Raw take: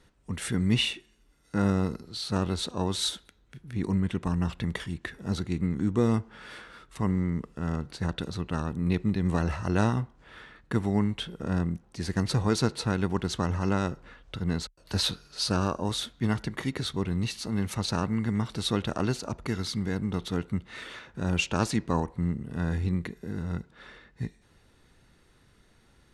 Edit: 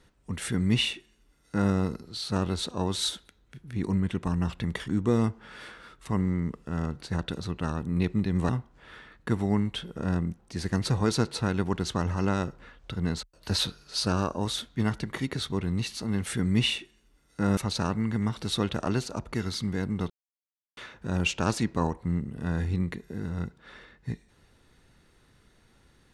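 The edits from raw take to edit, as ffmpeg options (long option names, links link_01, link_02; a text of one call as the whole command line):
ffmpeg -i in.wav -filter_complex "[0:a]asplit=7[link_01][link_02][link_03][link_04][link_05][link_06][link_07];[link_01]atrim=end=4.882[link_08];[link_02]atrim=start=5.778:end=9.392[link_09];[link_03]atrim=start=9.928:end=17.702[link_10];[link_04]atrim=start=0.408:end=1.722[link_11];[link_05]atrim=start=17.698:end=20.23,asetpts=PTS-STARTPTS,afade=type=out:start_time=2.528:duration=0.004:curve=hsin[link_12];[link_06]atrim=start=20.23:end=20.9,asetpts=PTS-STARTPTS,volume=0[link_13];[link_07]atrim=start=20.9,asetpts=PTS-STARTPTS,afade=type=in:duration=0.004:curve=hsin[link_14];[link_08][link_09]acrossfade=duration=0.004:curve1=hsin:curve2=hsin[link_15];[link_15][link_10]acrossfade=duration=0.004:curve1=hsin:curve2=hsin[link_16];[link_16][link_11]acrossfade=duration=0.004:curve1=hsin:curve2=hsin[link_17];[link_12][link_13][link_14]concat=n=3:v=0:a=1[link_18];[link_17][link_18]acrossfade=duration=0.004:curve1=hsin:curve2=hsin" out.wav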